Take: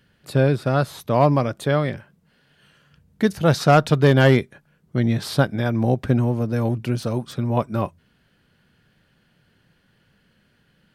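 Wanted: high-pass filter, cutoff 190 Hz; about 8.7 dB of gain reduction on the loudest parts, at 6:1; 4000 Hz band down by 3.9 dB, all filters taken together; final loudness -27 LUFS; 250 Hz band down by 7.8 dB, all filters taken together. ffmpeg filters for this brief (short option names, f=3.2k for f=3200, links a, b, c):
-af "highpass=190,equalizer=f=250:t=o:g=-7.5,equalizer=f=4k:t=o:g=-5,acompressor=threshold=-21dB:ratio=6,volume=2dB"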